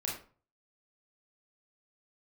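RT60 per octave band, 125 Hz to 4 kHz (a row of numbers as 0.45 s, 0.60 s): 0.55 s, 0.40 s, 0.40 s, 0.40 s, 0.35 s, 0.25 s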